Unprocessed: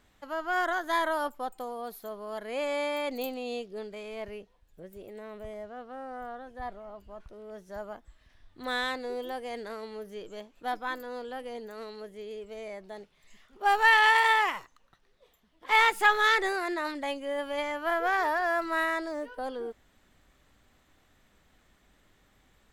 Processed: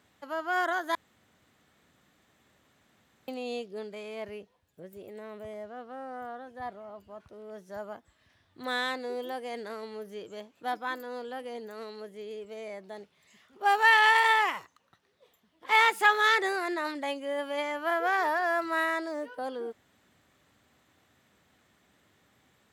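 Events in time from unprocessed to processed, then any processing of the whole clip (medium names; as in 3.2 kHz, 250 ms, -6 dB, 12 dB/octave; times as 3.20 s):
0.95–3.28 s: room tone
whole clip: high-pass 85 Hz 24 dB/octave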